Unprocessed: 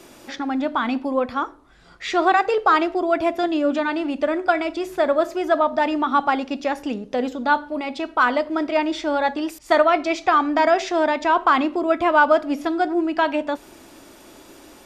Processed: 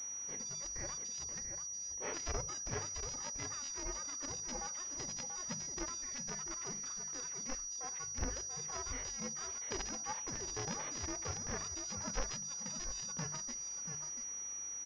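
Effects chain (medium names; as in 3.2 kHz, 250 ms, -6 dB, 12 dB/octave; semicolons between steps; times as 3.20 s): four frequency bands reordered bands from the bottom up 2341; band-stop 710 Hz, Q 12; harmonic-percussive split harmonic -11 dB; hum notches 50/100/150/200 Hz; harmonic-percussive split percussive -17 dB; compression 1.5:1, threshold -35 dBFS, peak gain reduction 5 dB; delay 686 ms -7 dB; class-D stage that switches slowly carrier 5.8 kHz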